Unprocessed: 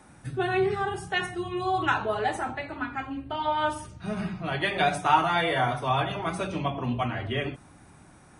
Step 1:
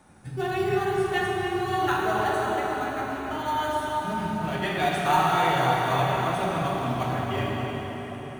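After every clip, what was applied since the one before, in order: in parallel at -11 dB: sample-and-hold 17×; on the sum: tape echo 0.285 s, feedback 69%, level -5.5 dB, low-pass 2400 Hz; plate-style reverb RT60 3.9 s, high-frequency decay 0.95×, DRR -2.5 dB; gain -5 dB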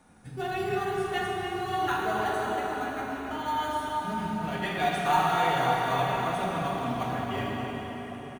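comb 4.2 ms, depth 32%; gain -3.5 dB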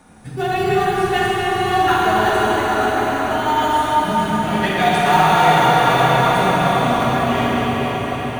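in parallel at -8 dB: hard clip -26.5 dBFS, distortion -10 dB; on the sum: diffused feedback echo 0.491 s, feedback 57%, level -7.5 dB; Schroeder reverb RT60 3.3 s, DRR 2 dB; gain +7.5 dB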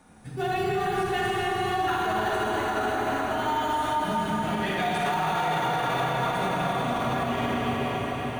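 limiter -11 dBFS, peak gain reduction 9 dB; gain -7 dB

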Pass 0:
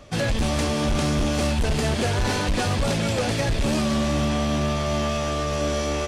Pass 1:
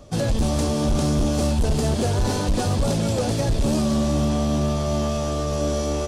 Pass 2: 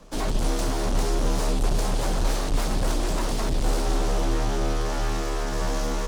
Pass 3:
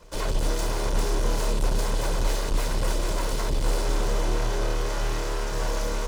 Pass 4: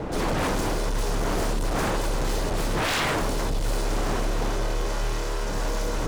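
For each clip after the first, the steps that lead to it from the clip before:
bell 2100 Hz -12 dB 1.6 oct; gain +2.5 dB
full-wave rectifier; frequency shift -35 Hz; gain -1.5 dB
minimum comb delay 2 ms
wind noise 550 Hz -23 dBFS; wavefolder -19.5 dBFS

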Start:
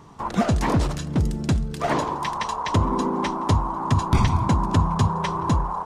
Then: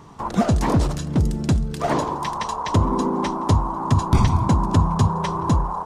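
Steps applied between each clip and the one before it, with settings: dynamic EQ 2200 Hz, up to -5 dB, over -41 dBFS, Q 0.77; gain +2.5 dB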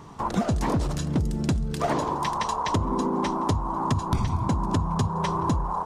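compressor, threshold -21 dBFS, peak gain reduction 10.5 dB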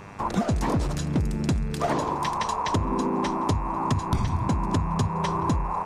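buzz 100 Hz, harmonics 27, -47 dBFS -2 dB/oct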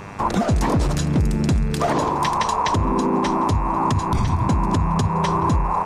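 limiter -17.5 dBFS, peak gain reduction 6 dB; gain +7 dB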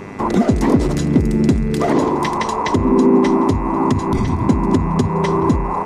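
small resonant body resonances 260/370/2000 Hz, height 11 dB, ringing for 30 ms; gain -1 dB

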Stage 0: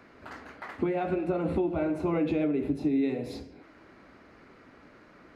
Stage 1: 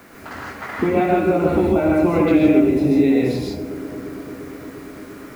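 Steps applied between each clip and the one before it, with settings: added noise white -65 dBFS; dark delay 0.348 s, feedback 76%, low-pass 560 Hz, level -14 dB; non-linear reverb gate 0.18 s rising, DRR -2.5 dB; gain +8.5 dB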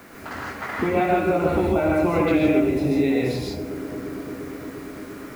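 dynamic EQ 260 Hz, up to -6 dB, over -29 dBFS, Q 0.82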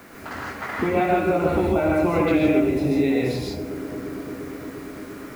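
nothing audible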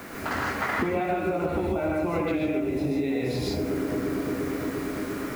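compressor 12:1, threshold -28 dBFS, peak gain reduction 14.5 dB; gain +5 dB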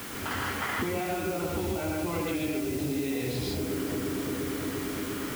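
thirty-one-band EQ 100 Hz +8 dB, 630 Hz -5 dB, 3150 Hz +10 dB; in parallel at -0.5 dB: limiter -26.5 dBFS, peak gain reduction 11 dB; on the sum: requantised 6-bit, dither triangular; gain -7 dB

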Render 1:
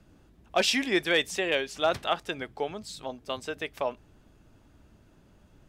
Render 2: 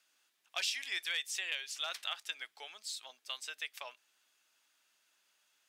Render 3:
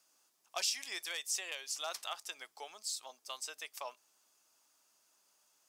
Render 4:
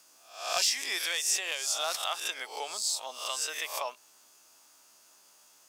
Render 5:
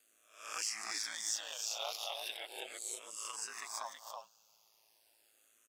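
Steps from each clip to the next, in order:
Bessel high-pass 2900 Hz, order 2; compressor 4:1, threshold -35 dBFS, peak gain reduction 10.5 dB; gain +1.5 dB
band shelf 2400 Hz -10.5 dB; gain +5 dB
spectral swells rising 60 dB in 0.51 s; in parallel at +1 dB: compressor, threshold -44 dBFS, peak gain reduction 15 dB; on the sum: soft clip -17.5 dBFS, distortion -27 dB; gain +4 dB
echo 0.326 s -4.5 dB; ring modulator 55 Hz; endless phaser -0.37 Hz; gain -4.5 dB

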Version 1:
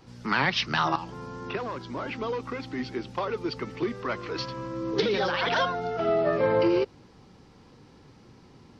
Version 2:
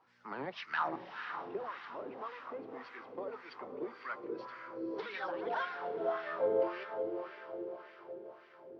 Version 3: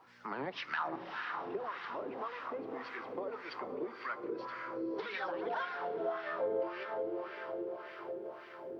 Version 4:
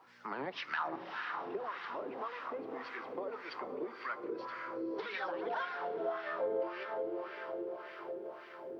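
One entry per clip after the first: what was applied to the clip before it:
diffused feedback echo 0.5 s, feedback 59%, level -7 dB; wah 1.8 Hz 390–1900 Hz, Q 2.1; gain -5.5 dB
on a send at -20 dB: reverb RT60 1.6 s, pre-delay 3 ms; on the sum: compressor 2:1, threshold -50 dBFS, peak gain reduction 13 dB; gain +8.5 dB
low shelf 110 Hz -9.5 dB

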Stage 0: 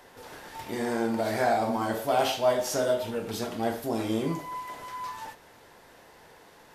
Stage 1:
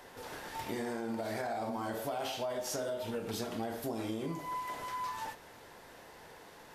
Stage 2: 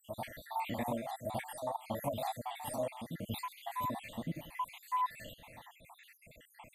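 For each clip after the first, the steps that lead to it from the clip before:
limiter -19.5 dBFS, peak gain reduction 6.5 dB; compressor, threshold -34 dBFS, peak gain reduction 10 dB
random spectral dropouts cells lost 74%; fixed phaser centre 1500 Hz, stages 6; reverse echo 1.161 s -4.5 dB; gain +7 dB

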